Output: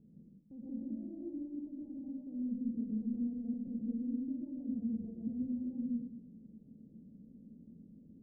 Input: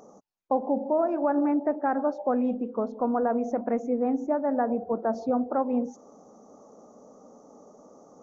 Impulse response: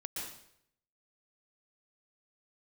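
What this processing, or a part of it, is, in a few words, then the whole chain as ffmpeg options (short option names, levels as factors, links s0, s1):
club heard from the street: -filter_complex "[0:a]alimiter=level_in=1.33:limit=0.0631:level=0:latency=1:release=98,volume=0.75,lowpass=f=190:w=0.5412,lowpass=f=190:w=1.3066[s0];[1:a]atrim=start_sample=2205[s1];[s0][s1]afir=irnorm=-1:irlink=0,volume=2.66"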